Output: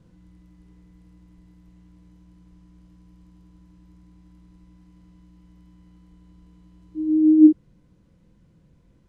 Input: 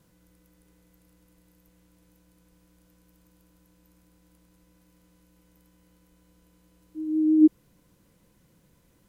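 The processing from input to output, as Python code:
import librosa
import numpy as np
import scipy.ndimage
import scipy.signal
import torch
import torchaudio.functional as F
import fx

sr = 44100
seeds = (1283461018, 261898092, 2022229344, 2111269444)

y = fx.low_shelf(x, sr, hz=320.0, db=12.0)
y = fx.rider(y, sr, range_db=10, speed_s=0.5)
y = fx.air_absorb(y, sr, metres=79.0)
y = fx.room_early_taps(y, sr, ms=(23, 49), db=(-10.0, -6.5))
y = F.gain(torch.from_numpy(y), -1.5).numpy()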